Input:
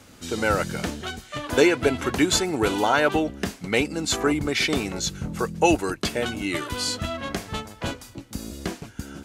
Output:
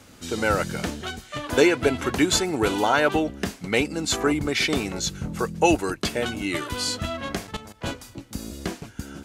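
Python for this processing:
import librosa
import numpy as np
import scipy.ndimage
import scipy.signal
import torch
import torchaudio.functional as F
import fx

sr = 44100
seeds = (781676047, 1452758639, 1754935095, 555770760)

y = fx.level_steps(x, sr, step_db=14, at=(7.47, 7.87))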